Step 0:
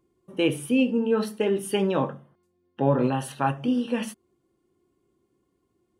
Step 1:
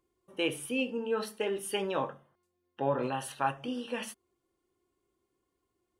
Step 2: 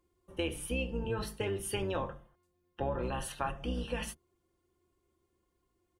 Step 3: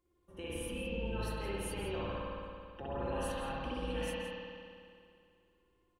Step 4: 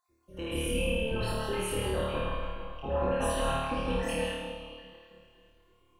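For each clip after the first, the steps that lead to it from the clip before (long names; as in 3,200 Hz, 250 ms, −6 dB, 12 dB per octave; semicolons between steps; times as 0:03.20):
parametric band 180 Hz −12 dB 2.1 octaves; level −3 dB
sub-octave generator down 2 octaves, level +4 dB; comb filter 5.7 ms, depth 34%; downward compressor, threshold −30 dBFS, peak gain reduction 8 dB
brickwall limiter −30 dBFS, peak gain reduction 12 dB; slap from a distant wall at 29 metres, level −8 dB; spring reverb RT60 2.3 s, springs 55 ms, chirp 20 ms, DRR −6 dB; level −5.5 dB
time-frequency cells dropped at random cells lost 36%; on a send: flutter between parallel walls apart 4.6 metres, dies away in 0.99 s; on the sum: level +5.5 dB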